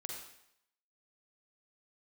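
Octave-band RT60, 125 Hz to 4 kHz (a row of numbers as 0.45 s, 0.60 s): 0.65 s, 0.70 s, 0.75 s, 0.75 s, 0.75 s, 0.75 s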